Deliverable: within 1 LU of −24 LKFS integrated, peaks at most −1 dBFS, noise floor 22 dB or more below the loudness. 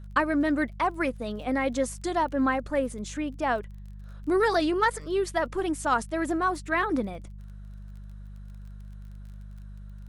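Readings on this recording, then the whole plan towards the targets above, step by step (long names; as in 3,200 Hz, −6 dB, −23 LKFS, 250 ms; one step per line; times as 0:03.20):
crackle rate 28 per second; mains hum 50 Hz; hum harmonics up to 200 Hz; level of the hum −39 dBFS; integrated loudness −27.5 LKFS; sample peak −10.5 dBFS; target loudness −24.0 LKFS
→ click removal
hum removal 50 Hz, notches 4
level +3.5 dB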